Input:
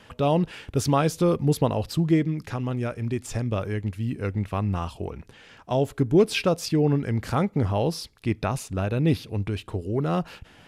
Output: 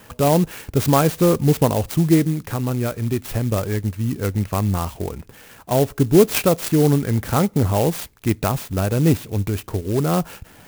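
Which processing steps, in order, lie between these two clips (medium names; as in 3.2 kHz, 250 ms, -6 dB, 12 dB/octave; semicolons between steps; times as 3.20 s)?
sampling jitter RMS 0.063 ms; trim +5.5 dB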